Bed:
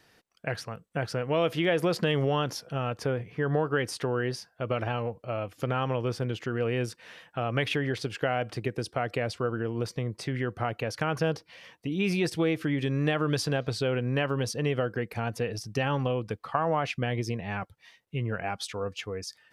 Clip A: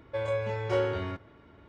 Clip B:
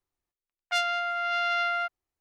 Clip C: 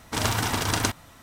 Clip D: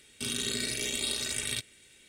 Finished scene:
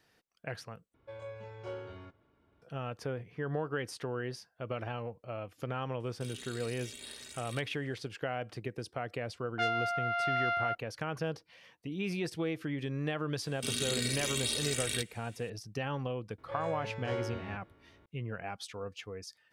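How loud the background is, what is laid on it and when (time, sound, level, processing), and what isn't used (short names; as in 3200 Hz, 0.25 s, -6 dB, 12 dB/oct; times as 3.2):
bed -8 dB
0.94 replace with A -14.5 dB + notch 1900 Hz, Q 9.3
6 add D -15.5 dB
8.87 add B -0.5 dB + LPF 1200 Hz 6 dB/oct
13.42 add D -2 dB
16.38 add A -11 dB + spectral dilation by 60 ms
not used: C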